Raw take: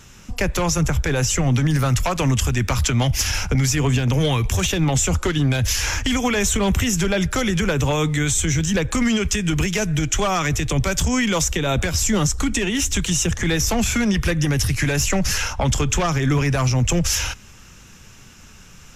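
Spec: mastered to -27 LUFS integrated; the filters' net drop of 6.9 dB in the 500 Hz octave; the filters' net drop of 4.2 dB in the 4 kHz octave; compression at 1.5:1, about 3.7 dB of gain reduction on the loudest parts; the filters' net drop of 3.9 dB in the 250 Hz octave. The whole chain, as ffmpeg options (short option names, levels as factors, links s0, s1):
-af "equalizer=f=250:t=o:g=-4,equalizer=f=500:t=o:g=-7.5,equalizer=f=4000:t=o:g=-6,acompressor=threshold=0.0447:ratio=1.5,volume=0.841"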